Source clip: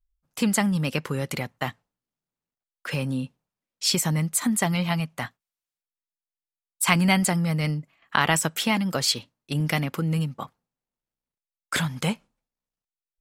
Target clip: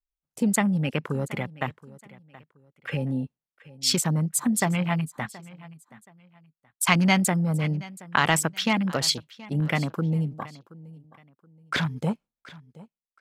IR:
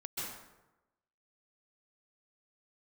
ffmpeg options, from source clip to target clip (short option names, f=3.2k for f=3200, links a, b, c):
-af "afwtdn=0.0224,aecho=1:1:725|1450:0.1|0.029"